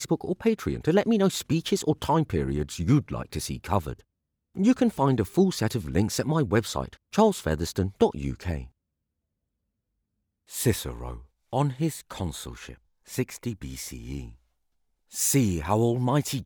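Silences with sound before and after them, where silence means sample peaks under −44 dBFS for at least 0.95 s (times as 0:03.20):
0:08.67–0:10.50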